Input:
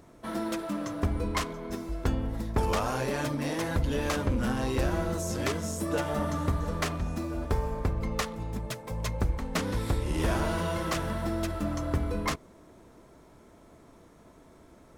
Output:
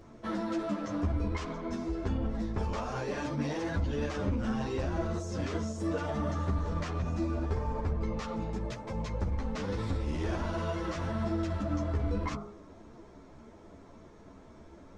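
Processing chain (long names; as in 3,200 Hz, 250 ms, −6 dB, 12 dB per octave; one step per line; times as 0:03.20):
parametric band 6,300 Hz +10.5 dB 1.3 octaves
hum removal 51.85 Hz, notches 28
brickwall limiter −27 dBFS, peak gain reduction 14.5 dB
head-to-tape spacing loss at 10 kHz 25 dB
string-ensemble chorus
level +7 dB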